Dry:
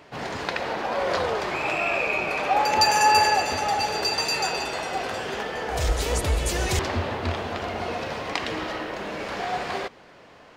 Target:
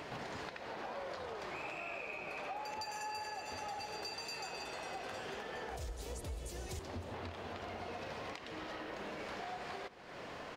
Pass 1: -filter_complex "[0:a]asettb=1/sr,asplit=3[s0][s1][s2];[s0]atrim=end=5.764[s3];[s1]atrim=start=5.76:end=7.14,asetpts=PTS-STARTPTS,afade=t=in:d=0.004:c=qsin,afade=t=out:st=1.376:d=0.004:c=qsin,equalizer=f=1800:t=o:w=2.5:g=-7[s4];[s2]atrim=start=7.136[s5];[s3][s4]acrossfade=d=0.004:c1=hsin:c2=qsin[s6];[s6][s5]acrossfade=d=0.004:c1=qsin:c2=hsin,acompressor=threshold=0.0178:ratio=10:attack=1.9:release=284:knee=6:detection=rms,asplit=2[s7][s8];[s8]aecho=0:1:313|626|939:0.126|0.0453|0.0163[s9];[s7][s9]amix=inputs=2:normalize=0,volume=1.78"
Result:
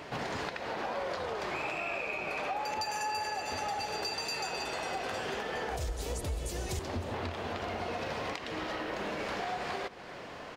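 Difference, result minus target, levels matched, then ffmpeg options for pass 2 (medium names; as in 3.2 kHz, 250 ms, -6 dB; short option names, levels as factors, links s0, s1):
compression: peak gain reduction -8 dB
-filter_complex "[0:a]asettb=1/sr,asplit=3[s0][s1][s2];[s0]atrim=end=5.764[s3];[s1]atrim=start=5.76:end=7.14,asetpts=PTS-STARTPTS,afade=t=in:d=0.004:c=qsin,afade=t=out:st=1.376:d=0.004:c=qsin,equalizer=f=1800:t=o:w=2.5:g=-7[s4];[s2]atrim=start=7.136[s5];[s3][s4]acrossfade=d=0.004:c1=hsin:c2=qsin[s6];[s6][s5]acrossfade=d=0.004:c1=qsin:c2=hsin,acompressor=threshold=0.00631:ratio=10:attack=1.9:release=284:knee=6:detection=rms,asplit=2[s7][s8];[s8]aecho=0:1:313|626|939:0.126|0.0453|0.0163[s9];[s7][s9]amix=inputs=2:normalize=0,volume=1.78"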